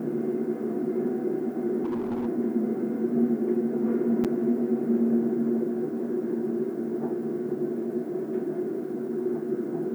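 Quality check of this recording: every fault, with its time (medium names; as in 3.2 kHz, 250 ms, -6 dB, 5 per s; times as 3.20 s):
1.83–2.27 s: clipped -25.5 dBFS
4.24–4.25 s: dropout 7.1 ms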